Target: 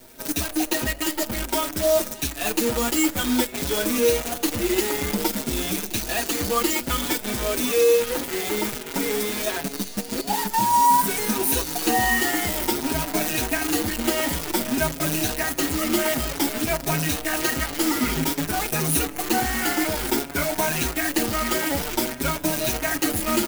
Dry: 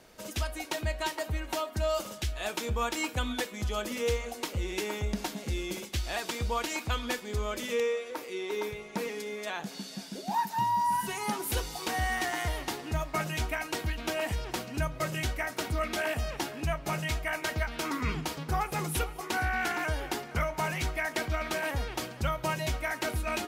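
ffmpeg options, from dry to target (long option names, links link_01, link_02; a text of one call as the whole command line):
ffmpeg -i in.wav -filter_complex "[0:a]afftfilt=real='re*pow(10,9/40*sin(2*PI*(1.6*log(max(b,1)*sr/1024/100)/log(2)-(0.54)*(pts-256)/sr)))':imag='im*pow(10,9/40*sin(2*PI*(1.6*log(max(b,1)*sr/1024/100)/log(2)-(0.54)*(pts-256)/sr)))':win_size=1024:overlap=0.75,acrossover=split=440[link_01][link_02];[link_01]asoftclip=type=tanh:threshold=-33.5dB[link_03];[link_03][link_02]amix=inputs=2:normalize=0,equalizer=frequency=280:width=1.4:gain=13,asplit=2[link_04][link_05];[link_05]aecho=0:1:1125|2250|3375|4500|5625:0.168|0.0873|0.0454|0.0236|0.0123[link_06];[link_04][link_06]amix=inputs=2:normalize=0,acrusher=bits=6:dc=4:mix=0:aa=0.000001,highshelf=frequency=8300:gain=10,bandreject=frequency=1100:width=16,asplit=2[link_07][link_08];[link_08]adelay=6.1,afreqshift=1.5[link_09];[link_07][link_09]amix=inputs=2:normalize=1,volume=7dB" out.wav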